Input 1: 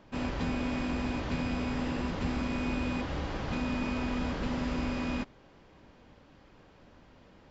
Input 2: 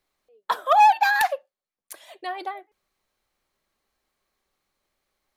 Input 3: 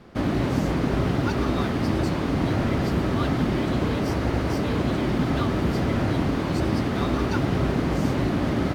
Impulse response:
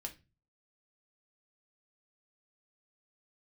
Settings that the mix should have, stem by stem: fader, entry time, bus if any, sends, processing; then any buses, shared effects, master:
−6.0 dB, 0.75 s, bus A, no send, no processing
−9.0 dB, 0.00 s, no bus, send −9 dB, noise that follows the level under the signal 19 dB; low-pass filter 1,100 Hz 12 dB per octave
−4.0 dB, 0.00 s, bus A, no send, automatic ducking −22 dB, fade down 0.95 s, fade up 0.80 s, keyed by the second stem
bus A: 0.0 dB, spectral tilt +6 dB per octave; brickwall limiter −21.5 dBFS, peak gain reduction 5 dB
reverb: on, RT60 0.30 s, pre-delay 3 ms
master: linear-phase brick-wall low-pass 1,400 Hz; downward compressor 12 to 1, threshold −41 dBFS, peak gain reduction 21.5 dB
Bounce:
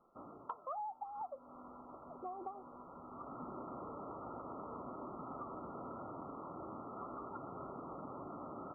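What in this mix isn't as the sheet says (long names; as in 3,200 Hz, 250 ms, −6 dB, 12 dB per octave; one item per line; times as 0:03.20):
stem 1 −6.0 dB → −12.5 dB
stem 2: missing low-pass filter 1,100 Hz 12 dB per octave
stem 3 −4.0 dB → −14.0 dB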